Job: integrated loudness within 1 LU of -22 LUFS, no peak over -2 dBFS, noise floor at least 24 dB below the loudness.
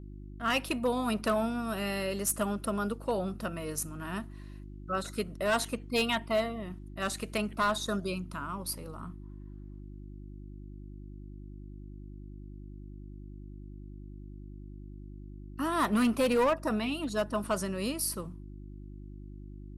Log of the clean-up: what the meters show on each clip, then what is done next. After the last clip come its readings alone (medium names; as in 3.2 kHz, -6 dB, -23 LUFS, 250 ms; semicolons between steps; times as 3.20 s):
clipped samples 0.6%; clipping level -21.5 dBFS; hum 50 Hz; highest harmonic 350 Hz; hum level -43 dBFS; loudness -31.5 LUFS; peak level -21.5 dBFS; loudness target -22.0 LUFS
-> clip repair -21.5 dBFS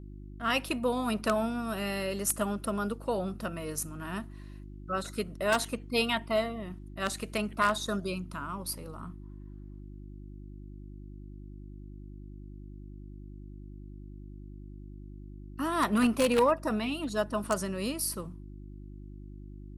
clipped samples 0.0%; hum 50 Hz; highest harmonic 350 Hz; hum level -43 dBFS
-> de-hum 50 Hz, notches 7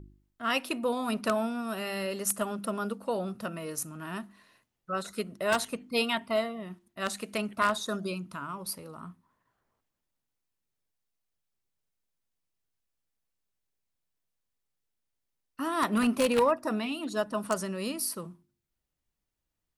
hum not found; loudness -31.0 LUFS; peak level -12.0 dBFS; loudness target -22.0 LUFS
-> trim +9 dB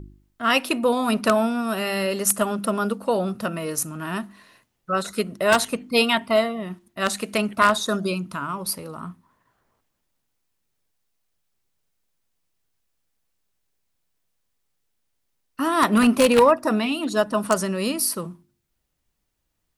loudness -22.0 LUFS; peak level -3.0 dBFS; noise floor -75 dBFS